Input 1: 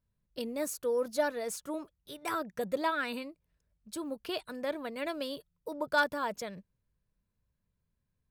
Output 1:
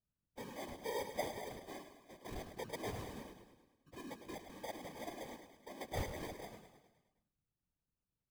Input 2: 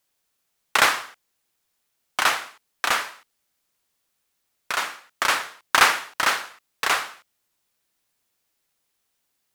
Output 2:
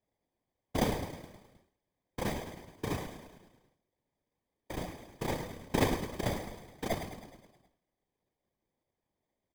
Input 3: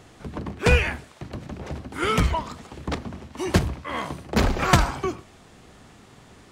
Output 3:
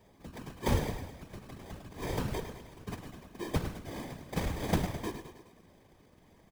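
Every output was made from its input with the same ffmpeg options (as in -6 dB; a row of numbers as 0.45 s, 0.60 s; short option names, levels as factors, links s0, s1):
-af "acrusher=samples=32:mix=1:aa=0.000001,aecho=1:1:105|210|315|420|525|630|735:0.355|0.202|0.115|0.0657|0.0375|0.0213|0.0122,afftfilt=real='hypot(re,im)*cos(2*PI*random(0))':imag='hypot(re,im)*sin(2*PI*random(1))':win_size=512:overlap=0.75,volume=0.501"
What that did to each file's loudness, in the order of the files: -11.5 LU, -14.0 LU, -12.5 LU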